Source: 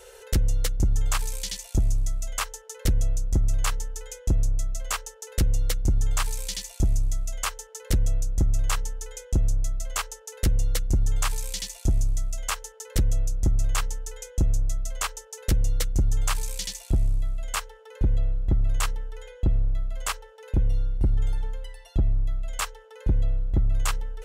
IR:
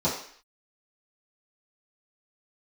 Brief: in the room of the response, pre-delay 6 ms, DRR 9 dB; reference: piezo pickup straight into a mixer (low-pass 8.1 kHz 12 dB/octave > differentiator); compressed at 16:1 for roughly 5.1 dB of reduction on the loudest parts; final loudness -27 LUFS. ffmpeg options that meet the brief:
-filter_complex "[0:a]acompressor=threshold=0.0708:ratio=16,asplit=2[s0][s1];[1:a]atrim=start_sample=2205,adelay=6[s2];[s1][s2]afir=irnorm=-1:irlink=0,volume=0.0891[s3];[s0][s3]amix=inputs=2:normalize=0,lowpass=8100,aderivative,volume=4.73"

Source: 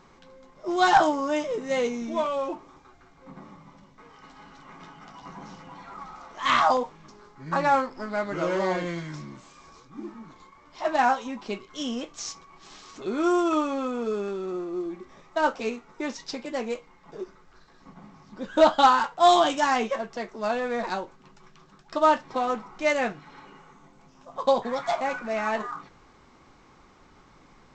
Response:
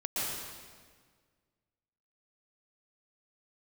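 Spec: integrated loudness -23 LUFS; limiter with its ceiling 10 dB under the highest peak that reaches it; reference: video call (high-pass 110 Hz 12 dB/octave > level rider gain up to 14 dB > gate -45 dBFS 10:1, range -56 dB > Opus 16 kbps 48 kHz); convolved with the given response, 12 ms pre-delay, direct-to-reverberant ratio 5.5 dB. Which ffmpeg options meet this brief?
-filter_complex "[0:a]alimiter=limit=0.112:level=0:latency=1,asplit=2[s0][s1];[1:a]atrim=start_sample=2205,adelay=12[s2];[s1][s2]afir=irnorm=-1:irlink=0,volume=0.251[s3];[s0][s3]amix=inputs=2:normalize=0,highpass=110,dynaudnorm=m=5.01,agate=range=0.00158:threshold=0.00562:ratio=10,volume=0.794" -ar 48000 -c:a libopus -b:a 16k

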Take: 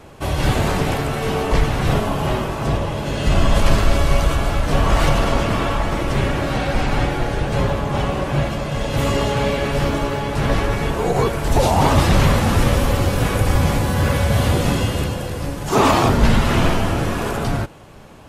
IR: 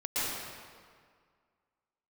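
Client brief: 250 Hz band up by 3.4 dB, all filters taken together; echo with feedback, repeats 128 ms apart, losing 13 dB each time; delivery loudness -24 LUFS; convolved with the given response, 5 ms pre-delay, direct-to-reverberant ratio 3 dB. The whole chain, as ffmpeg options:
-filter_complex "[0:a]equalizer=f=250:t=o:g=4.5,aecho=1:1:128|256|384:0.224|0.0493|0.0108,asplit=2[s0][s1];[1:a]atrim=start_sample=2205,adelay=5[s2];[s1][s2]afir=irnorm=-1:irlink=0,volume=0.266[s3];[s0][s3]amix=inputs=2:normalize=0,volume=0.398"

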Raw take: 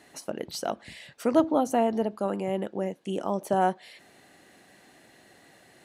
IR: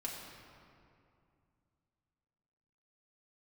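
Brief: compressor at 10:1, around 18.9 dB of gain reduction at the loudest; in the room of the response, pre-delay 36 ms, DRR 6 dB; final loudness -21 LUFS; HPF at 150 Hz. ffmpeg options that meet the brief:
-filter_complex "[0:a]highpass=150,acompressor=threshold=0.0178:ratio=10,asplit=2[s0][s1];[1:a]atrim=start_sample=2205,adelay=36[s2];[s1][s2]afir=irnorm=-1:irlink=0,volume=0.473[s3];[s0][s3]amix=inputs=2:normalize=0,volume=8.91"

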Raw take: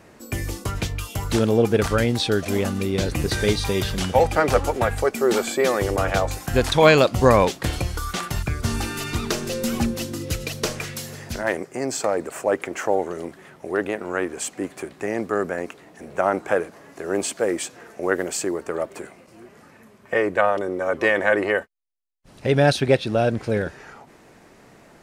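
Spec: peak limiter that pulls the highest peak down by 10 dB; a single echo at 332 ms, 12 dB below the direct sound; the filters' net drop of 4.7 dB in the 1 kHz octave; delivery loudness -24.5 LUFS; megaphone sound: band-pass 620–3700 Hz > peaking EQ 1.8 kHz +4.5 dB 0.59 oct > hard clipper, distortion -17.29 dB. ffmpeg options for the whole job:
-af "equalizer=f=1000:t=o:g=-6,alimiter=limit=0.2:level=0:latency=1,highpass=620,lowpass=3700,equalizer=f=1800:t=o:w=0.59:g=4.5,aecho=1:1:332:0.251,asoftclip=type=hard:threshold=0.0944,volume=2.11"

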